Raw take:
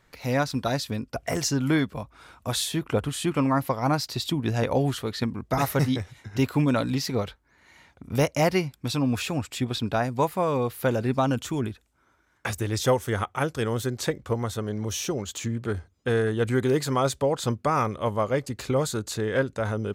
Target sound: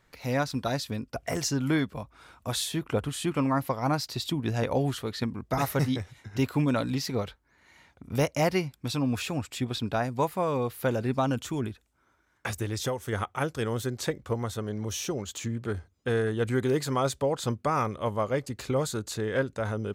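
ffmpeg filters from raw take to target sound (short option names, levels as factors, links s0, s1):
-filter_complex "[0:a]asettb=1/sr,asplit=3[s0][s1][s2];[s0]atrim=end=12.644[s3];[s1]atrim=start=12.64:end=13.13,asetpts=PTS-STARTPTS,afade=t=in:d=0.004:c=qsin,afade=t=out:st=0.486:d=0.004:c=qsin,acompressor=threshold=0.0631:ratio=5[s4];[s2]atrim=start=13.126[s5];[s3][s4]acrossfade=d=0.004:c1=hsin:c2=qsin[s6];[s6][s5]acrossfade=d=0.004:c1=qsin:c2=hsin,volume=0.708"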